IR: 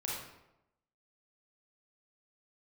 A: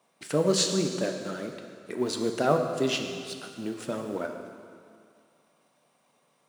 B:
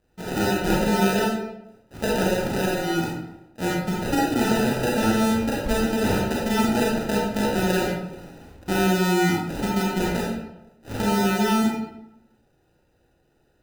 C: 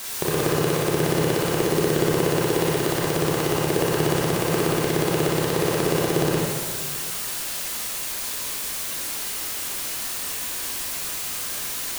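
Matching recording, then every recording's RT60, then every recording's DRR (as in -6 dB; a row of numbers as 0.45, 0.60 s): B; 2.2, 0.90, 1.6 s; 4.0, -5.0, -5.0 dB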